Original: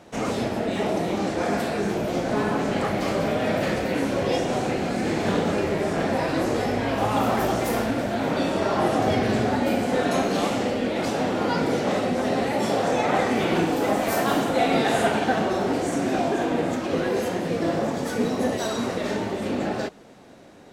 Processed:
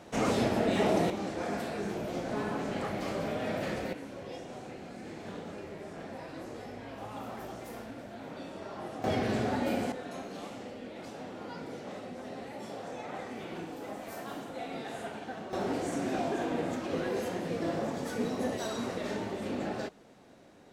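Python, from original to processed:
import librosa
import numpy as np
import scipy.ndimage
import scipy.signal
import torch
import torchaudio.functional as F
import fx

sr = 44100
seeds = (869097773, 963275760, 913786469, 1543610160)

y = fx.gain(x, sr, db=fx.steps((0.0, -2.0), (1.1, -10.0), (3.93, -19.0), (9.04, -8.0), (9.92, -18.5), (15.53, -8.5)))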